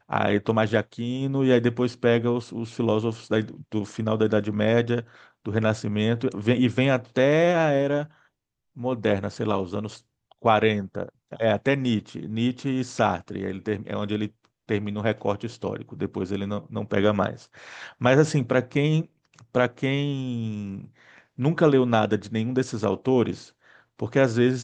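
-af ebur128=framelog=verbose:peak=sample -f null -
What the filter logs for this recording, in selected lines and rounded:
Integrated loudness:
  I:         -24.6 LUFS
  Threshold: -35.1 LUFS
Loudness range:
  LRA:         4.7 LU
  Threshold: -45.3 LUFS
  LRA low:   -28.0 LUFS
  LRA high:  -23.3 LUFS
Sample peak:
  Peak:       -4.3 dBFS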